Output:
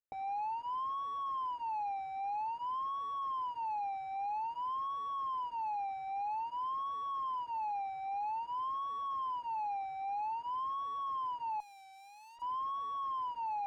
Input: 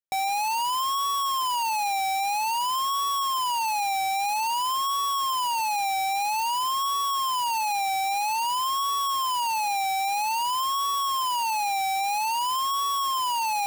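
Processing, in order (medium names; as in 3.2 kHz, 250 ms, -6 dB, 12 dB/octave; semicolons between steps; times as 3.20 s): low-pass 1 kHz 12 dB/octave; peak limiter -33 dBFS, peak gain reduction 8 dB; comb of notches 190 Hz; 11.60–12.42 s: valve stage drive 55 dB, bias 0.35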